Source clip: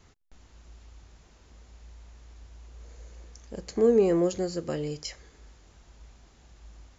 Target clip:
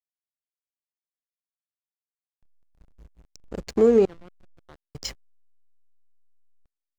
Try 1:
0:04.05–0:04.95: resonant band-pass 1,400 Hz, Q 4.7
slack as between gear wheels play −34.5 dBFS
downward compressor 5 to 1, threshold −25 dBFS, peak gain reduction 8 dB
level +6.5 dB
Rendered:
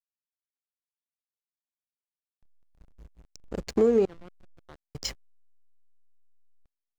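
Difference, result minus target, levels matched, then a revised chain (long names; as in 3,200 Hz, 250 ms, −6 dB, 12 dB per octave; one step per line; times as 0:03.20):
downward compressor: peak gain reduction +5 dB
0:04.05–0:04.95: resonant band-pass 1,400 Hz, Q 4.7
slack as between gear wheels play −34.5 dBFS
downward compressor 5 to 1, threshold −19 dBFS, peak gain reduction 3.5 dB
level +6.5 dB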